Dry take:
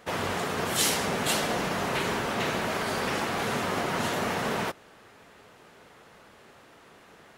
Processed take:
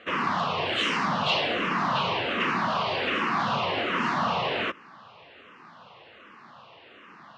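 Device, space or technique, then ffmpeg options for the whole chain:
barber-pole phaser into a guitar amplifier: -filter_complex "[0:a]asplit=2[link_01][link_02];[link_02]afreqshift=-1.3[link_03];[link_01][link_03]amix=inputs=2:normalize=1,asoftclip=type=tanh:threshold=-24dB,highpass=110,equalizer=frequency=420:width_type=q:width=4:gain=-5,equalizer=frequency=1100:width_type=q:width=4:gain=8,equalizer=frequency=2800:width_type=q:width=4:gain=7,lowpass=frequency=4500:width=0.5412,lowpass=frequency=4500:width=1.3066,volume=5dB"

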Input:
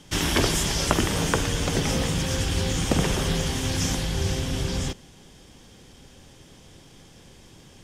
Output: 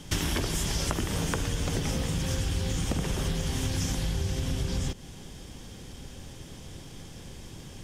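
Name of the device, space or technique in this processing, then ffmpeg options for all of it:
ASMR close-microphone chain: -af "lowshelf=frequency=180:gain=6.5,acompressor=threshold=-28dB:ratio=10,highshelf=frequency=10000:gain=5,volume=2.5dB"

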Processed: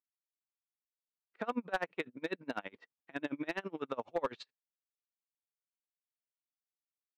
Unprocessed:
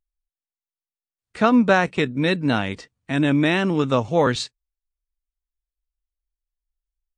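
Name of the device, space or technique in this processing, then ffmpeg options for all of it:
helicopter radio: -af "highpass=380,lowpass=2500,aeval=exprs='val(0)*pow(10,-31*(0.5-0.5*cos(2*PI*12*n/s))/20)':channel_layout=same,asoftclip=type=hard:threshold=-16dB,volume=-8dB"

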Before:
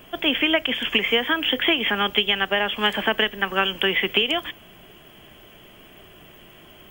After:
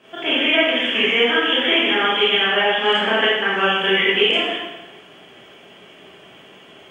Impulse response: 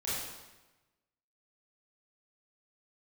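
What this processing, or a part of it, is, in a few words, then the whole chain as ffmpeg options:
supermarket ceiling speaker: -filter_complex "[0:a]asettb=1/sr,asplit=3[link_01][link_02][link_03];[link_01]atrim=end=2.434[link_04];[link_02]atrim=start=2.43:end=2.86,asetpts=PTS-STARTPTS,afade=type=in:duration=0.004:curve=qsin,afade=type=out:start_time=0.426:duration=0.004:curve=qsin,equalizer=frequency=12000:width=1.3:gain=-7.5[link_05];[link_03]atrim=start=2.856[link_06];[link_04][link_05]acrossfade=duration=0.004:curve1=hsin:curve2=qsin[link_07];[link_07][link_06]acrossfade=duration=0.004:curve1=qsin:curve2=hsin,highpass=220,lowpass=6700[link_08];[1:a]atrim=start_sample=2205[link_09];[link_08][link_09]afir=irnorm=-1:irlink=0"

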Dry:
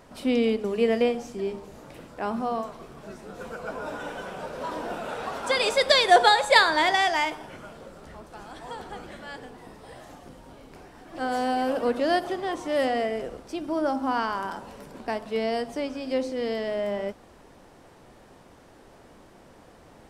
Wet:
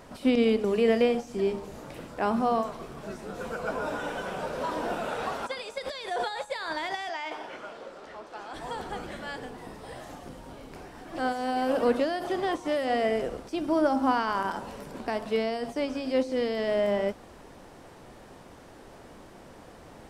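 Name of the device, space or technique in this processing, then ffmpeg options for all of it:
de-esser from a sidechain: -filter_complex "[0:a]asplit=2[link_01][link_02];[link_02]highpass=frequency=5900:width=0.5412,highpass=frequency=5900:width=1.3066,apad=whole_len=886105[link_03];[link_01][link_03]sidechaincompress=threshold=-55dB:ratio=16:attack=3.9:release=39,asettb=1/sr,asplit=3[link_04][link_05][link_06];[link_04]atrim=end=7.094[link_07];[link_05]atrim=start=7.09:end=8.54,asetpts=PTS-STARTPTS,afade=type=in:duration=0.004:curve=qsin,afade=type=out:start_time=1.446:duration=0.004:curve=qsin,acrossover=split=290 6400:gain=0.112 1 0.178[link_08][link_09][link_10];[link_08][link_09][link_10]amix=inputs=3:normalize=0[link_11];[link_06]atrim=start=8.536[link_12];[link_07][link_11]acrossfade=duration=0.004:curve1=hsin:curve2=qsin[link_13];[link_13][link_12]acrossfade=duration=0.004:curve1=qsin:curve2=hsin,volume=3dB"

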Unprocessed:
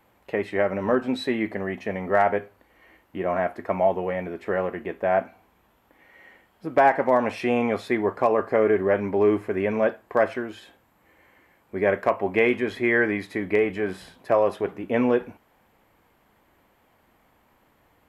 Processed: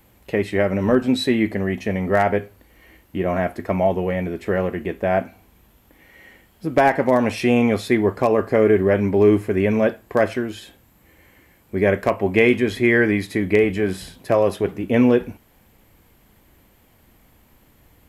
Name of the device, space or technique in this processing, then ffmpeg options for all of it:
smiley-face EQ: -af "lowshelf=frequency=110:gain=8.5,equalizer=frequency=1000:width_type=o:width=2.3:gain=-8.5,highshelf=frequency=5100:gain=6,volume=8dB"

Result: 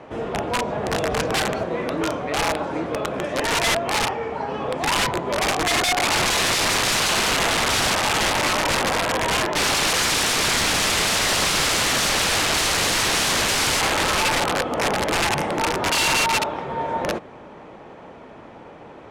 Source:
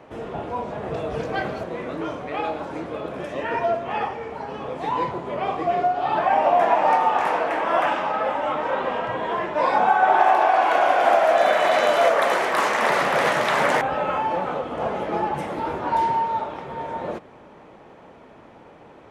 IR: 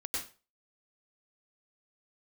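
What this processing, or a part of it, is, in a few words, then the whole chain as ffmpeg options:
overflowing digital effects unit: -af "aeval=exprs='(mod(10*val(0)+1,2)-1)/10':channel_layout=same,lowpass=10000,volume=5dB"

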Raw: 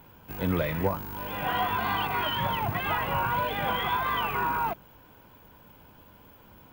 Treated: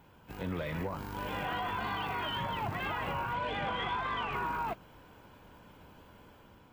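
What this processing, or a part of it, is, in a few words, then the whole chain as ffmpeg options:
low-bitrate web radio: -filter_complex "[0:a]asettb=1/sr,asplit=3[link_01][link_02][link_03];[link_01]atrim=end=3.334[link_04];[link_02]atrim=start=3.33:end=4.35,asetpts=PTS-STARTPTS,afade=type=in:duration=0.004:curve=qsin,afade=type=out:start_time=1.016:duration=0.004:curve=qsin,lowpass=6500[link_05];[link_03]atrim=start=4.346[link_06];[link_04][link_05]acrossfade=duration=0.004:curve1=hsin:curve2=qsin[link_07];[link_07][link_06]acrossfade=duration=0.004:curve1=qsin:curve2=hsin,dynaudnorm=framelen=520:gausssize=3:maxgain=4dB,alimiter=limit=-21dB:level=0:latency=1:release=86,volume=-5.5dB" -ar 32000 -c:a aac -b:a 48k

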